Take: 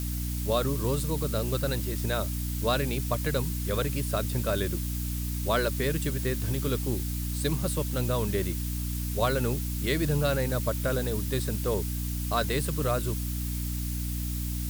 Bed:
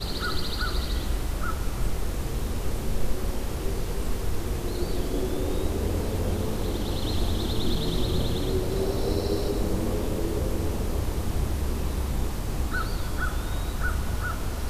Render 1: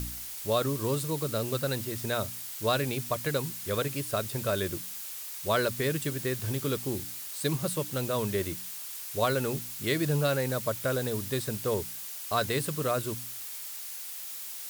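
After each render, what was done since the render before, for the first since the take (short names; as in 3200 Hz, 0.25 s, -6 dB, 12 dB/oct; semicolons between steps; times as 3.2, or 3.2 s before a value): de-hum 60 Hz, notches 5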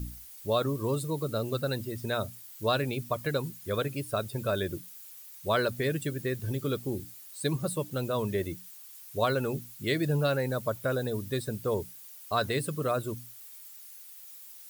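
denoiser 13 dB, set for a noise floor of -40 dBFS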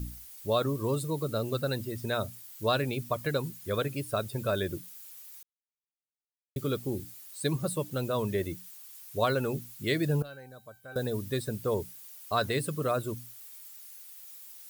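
5.43–6.56 mute; 10.22–10.96 resonator 780 Hz, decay 0.3 s, mix 90%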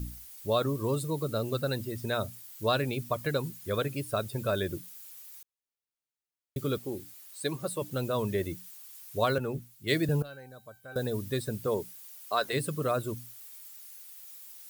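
6.78–7.82 tone controls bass -9 dB, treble -2 dB; 9.38–10.09 three-band expander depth 100%; 11.66–12.52 HPF 120 Hz -> 460 Hz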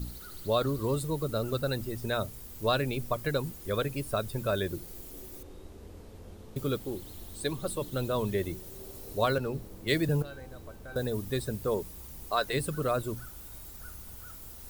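add bed -21 dB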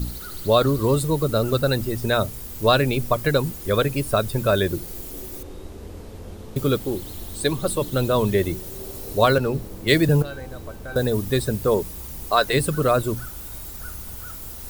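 gain +10 dB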